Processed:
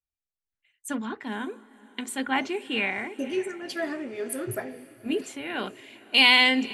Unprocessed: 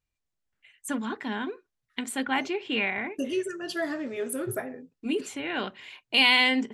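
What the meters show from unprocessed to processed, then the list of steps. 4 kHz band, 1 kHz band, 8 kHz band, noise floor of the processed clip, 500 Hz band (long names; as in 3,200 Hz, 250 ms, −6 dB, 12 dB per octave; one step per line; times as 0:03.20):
+3.0 dB, +1.5 dB, +0.5 dB, below −85 dBFS, 0.0 dB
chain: feedback delay with all-pass diffusion 527 ms, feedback 58%, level −16 dB
multiband upward and downward expander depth 40%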